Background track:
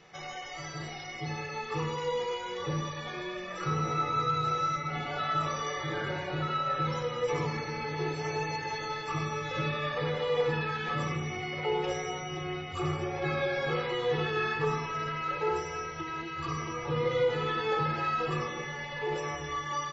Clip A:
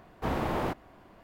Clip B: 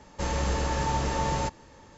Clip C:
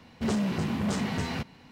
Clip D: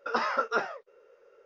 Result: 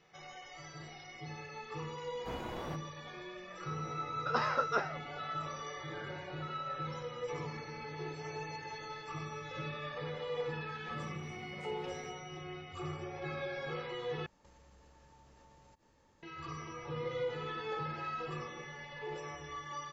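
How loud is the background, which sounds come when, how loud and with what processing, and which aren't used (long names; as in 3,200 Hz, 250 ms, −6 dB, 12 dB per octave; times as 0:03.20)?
background track −9.5 dB
0:02.03: mix in A −12.5 dB
0:04.20: mix in D −4.5 dB
0:10.70: mix in C −15 dB + downward compressor 4 to 1, threshold −38 dBFS
0:14.26: overwrite with B −16.5 dB + downward compressor 8 to 1, threshold −42 dBFS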